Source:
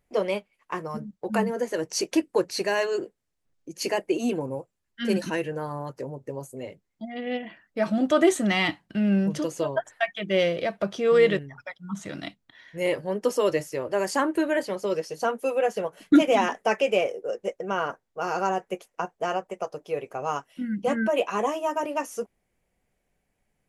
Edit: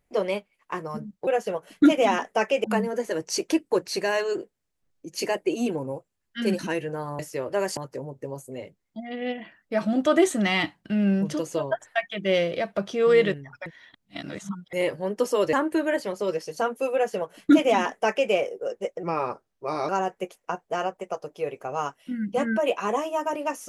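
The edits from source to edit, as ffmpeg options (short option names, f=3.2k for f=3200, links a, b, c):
-filter_complex "[0:a]asplit=10[a][b][c][d][e][f][g][h][i][j];[a]atrim=end=1.272[k];[b]atrim=start=15.568:end=16.942[l];[c]atrim=start=1.268:end=5.822[m];[d]atrim=start=13.578:end=14.162[n];[e]atrim=start=5.818:end=11.712[o];[f]atrim=start=11.708:end=12.782,asetpts=PTS-STARTPTS,areverse[p];[g]atrim=start=12.778:end=13.582[q];[h]atrim=start=14.158:end=17.664[r];[i]atrim=start=17.66:end=18.39,asetpts=PTS-STARTPTS,asetrate=37485,aresample=44100,atrim=end_sample=37874,asetpts=PTS-STARTPTS[s];[j]atrim=start=18.386[t];[k][l]acrossfade=d=0.004:c1=hsin:c2=hsin[u];[u][m]acrossfade=d=0.004:c1=hsin:c2=hsin[v];[v][n]acrossfade=d=0.004:c1=hsin:c2=hsin[w];[w][o]acrossfade=d=0.004:c1=hsin:c2=hsin[x];[x][p]acrossfade=d=0.004:c1=hsin:c2=hsin[y];[y][q]acrossfade=d=0.004:c1=hsin:c2=hsin[z];[z][r]acrossfade=d=0.004:c1=hsin:c2=hsin[aa];[aa][s]acrossfade=d=0.004:c1=hsin:c2=hsin[ab];[ab][t]acrossfade=d=0.004:c1=hsin:c2=hsin"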